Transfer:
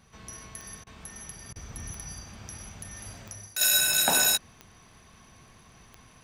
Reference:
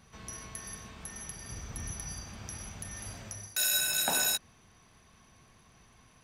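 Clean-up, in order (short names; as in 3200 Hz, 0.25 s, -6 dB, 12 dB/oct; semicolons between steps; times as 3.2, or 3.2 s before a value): de-click; interpolate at 0.84/1.53, 26 ms; gain correction -6 dB, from 3.61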